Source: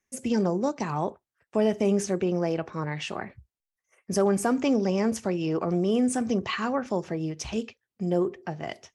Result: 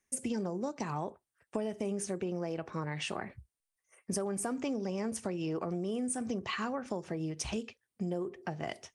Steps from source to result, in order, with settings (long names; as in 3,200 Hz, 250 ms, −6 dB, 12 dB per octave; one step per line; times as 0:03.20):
parametric band 9,100 Hz +13 dB 0.24 octaves
downward compressor, threshold −31 dBFS, peak gain reduction 12 dB
level −1 dB